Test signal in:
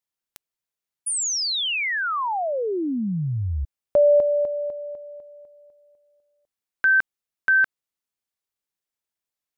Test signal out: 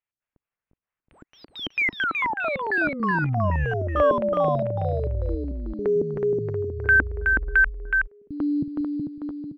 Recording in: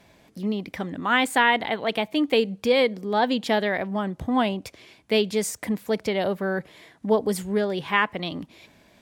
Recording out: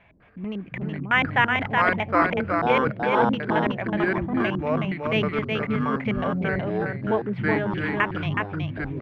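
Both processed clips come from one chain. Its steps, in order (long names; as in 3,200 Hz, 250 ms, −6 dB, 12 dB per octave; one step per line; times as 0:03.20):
parametric band 300 Hz −11.5 dB 1.4 octaves
auto-filter low-pass square 4.5 Hz 300–2,600 Hz
in parallel at −7.5 dB: sample-rate reduction 8,900 Hz, jitter 0%
on the sum: delay with pitch and tempo change per echo 201 ms, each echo −6 semitones, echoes 2
high-frequency loss of the air 390 metres
on a send: single-tap delay 371 ms −4 dB
on the sum: level −1 dB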